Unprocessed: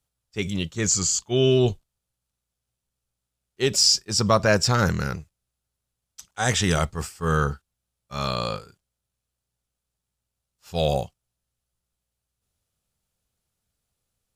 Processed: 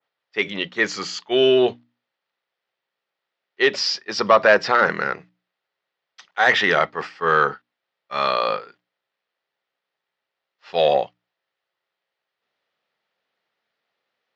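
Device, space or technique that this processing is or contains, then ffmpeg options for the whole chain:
intercom: -af "highpass=440,lowpass=3.5k,equalizer=f=1.9k:t=o:w=0.27:g=8,asoftclip=type=tanh:threshold=-13dB,highpass=110,lowpass=f=5k:w=0.5412,lowpass=f=5k:w=1.3066,bandreject=f=60:t=h:w=6,bandreject=f=120:t=h:w=6,bandreject=f=180:t=h:w=6,bandreject=f=240:t=h:w=6,bandreject=f=300:t=h:w=6,adynamicequalizer=threshold=0.0126:dfrequency=2300:dqfactor=0.7:tfrequency=2300:tqfactor=0.7:attack=5:release=100:ratio=0.375:range=3:mode=cutabove:tftype=highshelf,volume=9dB"

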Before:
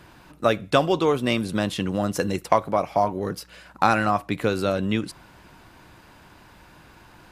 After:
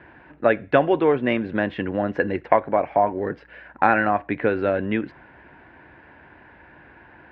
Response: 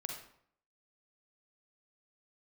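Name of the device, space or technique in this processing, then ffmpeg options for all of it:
bass cabinet: -af "highpass=72,equalizer=f=110:t=q:w=4:g=-8,equalizer=f=180:t=q:w=4:g=-9,equalizer=f=1.2k:t=q:w=4:g=-9,equalizer=f=1.7k:t=q:w=4:g=7,lowpass=f=2.3k:w=0.5412,lowpass=f=2.3k:w=1.3066,volume=3dB"

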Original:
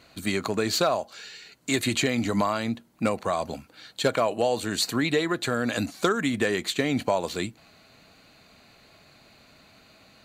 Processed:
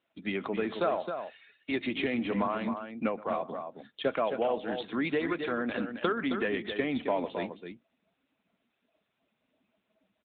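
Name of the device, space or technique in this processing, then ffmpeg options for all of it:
mobile call with aggressive noise cancelling: -filter_complex "[0:a]asettb=1/sr,asplit=3[a][b][c];[a]atrim=end=3.084[d];[b]atrim=start=3.08:end=3.48,asetpts=PTS-STARTPTS,afade=t=in:d=0.004:c=qsin,afade=t=out:st=0.396:d=0.004:c=qsin,equalizer=f=210:t=o:w=0.32:g=-4.5[e];[c]atrim=start=3.476[f];[d][e]acrossfade=d=0.004:c1=hsin:c2=qsin[g];[g][f]acrossfade=d=0.004:c1=qsin:c2=hsin,highpass=f=170:w=0.5412,highpass=f=170:w=1.3066,aecho=1:1:124|267:0.119|0.447,afftdn=nr=19:nf=-44,volume=-5dB" -ar 8000 -c:a libopencore_amrnb -b:a 10200

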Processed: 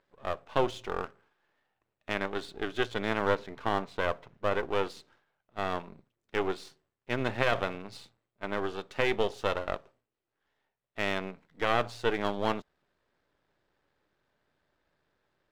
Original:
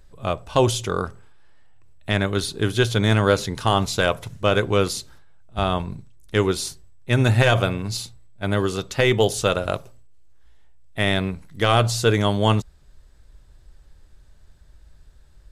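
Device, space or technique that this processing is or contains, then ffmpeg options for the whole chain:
crystal radio: -filter_complex "[0:a]asettb=1/sr,asplit=3[a][b][c];[a]atrim=end=3.354[d];[b]atrim=start=3.35:end=4.69,asetpts=PTS-STARTPTS,afade=t=in:d=0.004:c=qsin,afade=t=out:st=1.336:d=0.004:c=qsin,aemphasis=mode=reproduction:type=75kf[e];[c]atrim=start=4.686[f];[d][e]acrossfade=d=0.004:c1=hsin:c2=qsin[g];[g][f]acrossfade=d=0.004:c1=qsin:c2=hsin,highpass=280,lowpass=2.7k,aeval=exprs='if(lt(val(0),0),0.251*val(0),val(0))':c=same,volume=-5dB"

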